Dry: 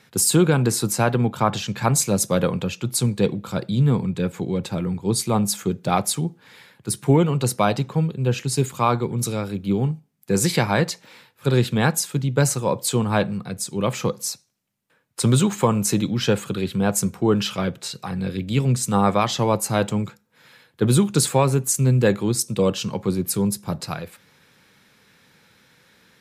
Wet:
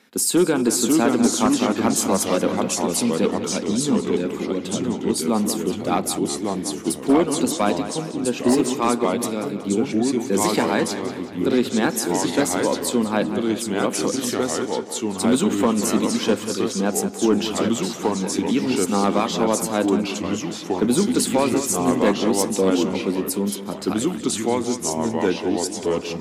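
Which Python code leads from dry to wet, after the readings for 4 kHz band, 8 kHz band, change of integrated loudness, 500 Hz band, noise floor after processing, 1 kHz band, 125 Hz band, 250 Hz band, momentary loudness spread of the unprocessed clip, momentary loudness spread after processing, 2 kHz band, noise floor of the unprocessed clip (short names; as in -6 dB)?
+1.5 dB, +0.5 dB, +0.5 dB, +2.5 dB, -32 dBFS, +1.0 dB, -10.0 dB, +3.5 dB, 9 LU, 6 LU, +0.5 dB, -61 dBFS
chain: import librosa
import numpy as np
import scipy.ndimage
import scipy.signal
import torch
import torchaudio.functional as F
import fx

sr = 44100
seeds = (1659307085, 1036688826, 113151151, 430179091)

p1 = fx.echo_pitch(x, sr, ms=503, semitones=-2, count=2, db_per_echo=-3.0)
p2 = fx.low_shelf_res(p1, sr, hz=180.0, db=-10.5, q=3.0)
p3 = np.clip(p2, -10.0 ** (-7.5 / 20.0), 10.0 ** (-7.5 / 20.0))
p4 = p3 + fx.echo_tape(p3, sr, ms=187, feedback_pct=58, wet_db=-10.5, lp_hz=5300.0, drive_db=2.0, wow_cents=7, dry=0)
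y = F.gain(torch.from_numpy(p4), -2.0).numpy()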